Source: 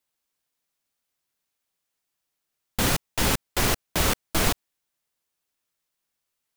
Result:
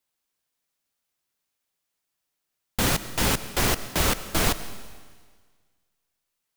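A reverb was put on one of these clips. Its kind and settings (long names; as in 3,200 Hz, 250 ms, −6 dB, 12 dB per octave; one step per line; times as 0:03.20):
comb and all-pass reverb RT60 1.6 s, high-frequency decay 1×, pre-delay 55 ms, DRR 13.5 dB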